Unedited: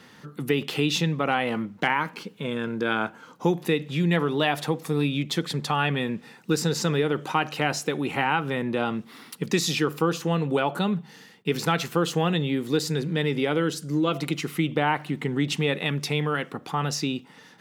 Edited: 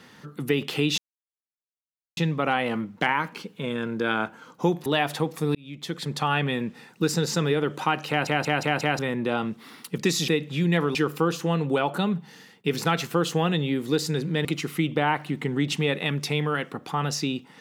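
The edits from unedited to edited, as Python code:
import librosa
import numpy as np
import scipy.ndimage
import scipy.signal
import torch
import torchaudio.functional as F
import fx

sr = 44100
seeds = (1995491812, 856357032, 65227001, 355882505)

y = fx.edit(x, sr, fx.insert_silence(at_s=0.98, length_s=1.19),
    fx.move(start_s=3.67, length_s=0.67, to_s=9.76),
    fx.fade_in_span(start_s=5.03, length_s=0.66),
    fx.stutter_over(start_s=7.57, slice_s=0.18, count=5),
    fx.cut(start_s=13.26, length_s=0.99), tone=tone)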